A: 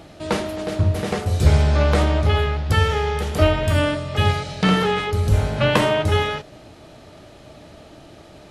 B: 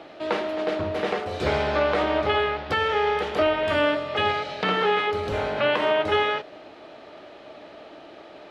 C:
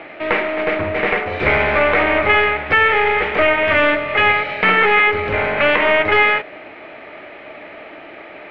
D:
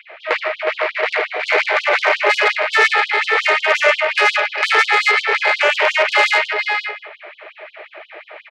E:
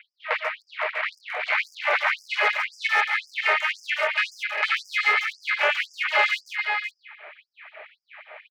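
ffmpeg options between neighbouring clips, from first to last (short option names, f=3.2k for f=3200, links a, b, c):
-filter_complex "[0:a]acrossover=split=280 4100:gain=0.0794 1 0.0708[a][b][c];[a][b][c]amix=inputs=3:normalize=0,alimiter=limit=-14.5dB:level=0:latency=1:release=261,volume=2.5dB"
-af "aeval=exprs='(tanh(7.08*val(0)+0.45)-tanh(0.45))/7.08':c=same,lowpass=f=2.2k:t=q:w=4.4,volume=7.5dB"
-filter_complex "[0:a]asplit=2[a][b];[b]aecho=0:1:75|117|402|506|689:0.237|0.422|0.376|0.562|0.158[c];[a][c]amix=inputs=2:normalize=0,aeval=exprs='(tanh(2.24*val(0)+0.7)-tanh(0.7))/2.24':c=same,afftfilt=real='re*gte(b*sr/1024,310*pow(3100/310,0.5+0.5*sin(2*PI*5.6*pts/sr)))':imag='im*gte(b*sr/1024,310*pow(3100/310,0.5+0.5*sin(2*PI*5.6*pts/sr)))':win_size=1024:overlap=0.75,volume=3dB"
-filter_complex "[0:a]acrossover=split=480 3900:gain=0.0708 1 0.251[a][b][c];[a][b][c]amix=inputs=3:normalize=0,asplit=2[d][e];[e]adelay=140,highpass=300,lowpass=3.4k,asoftclip=type=hard:threshold=-12dB,volume=-9dB[f];[d][f]amix=inputs=2:normalize=0,afftfilt=real='re*gte(b*sr/1024,250*pow(4900/250,0.5+0.5*sin(2*PI*1.9*pts/sr)))':imag='im*gte(b*sr/1024,250*pow(4900/250,0.5+0.5*sin(2*PI*1.9*pts/sr)))':win_size=1024:overlap=0.75,volume=-5.5dB"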